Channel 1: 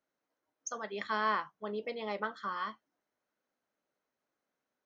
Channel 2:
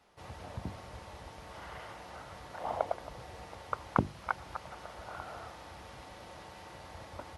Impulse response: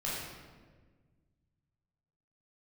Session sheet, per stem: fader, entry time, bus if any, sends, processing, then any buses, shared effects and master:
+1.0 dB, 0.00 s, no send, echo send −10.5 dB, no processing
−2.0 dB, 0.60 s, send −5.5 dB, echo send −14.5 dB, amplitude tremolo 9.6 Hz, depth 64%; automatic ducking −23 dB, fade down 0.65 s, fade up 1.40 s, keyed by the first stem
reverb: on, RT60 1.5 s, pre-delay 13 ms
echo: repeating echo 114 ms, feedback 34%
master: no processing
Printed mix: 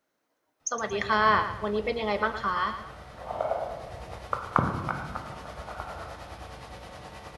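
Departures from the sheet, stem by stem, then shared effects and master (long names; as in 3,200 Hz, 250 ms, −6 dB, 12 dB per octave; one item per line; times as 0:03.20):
stem 1 +1.0 dB → +9.0 dB
stem 2 −2.0 dB → +4.0 dB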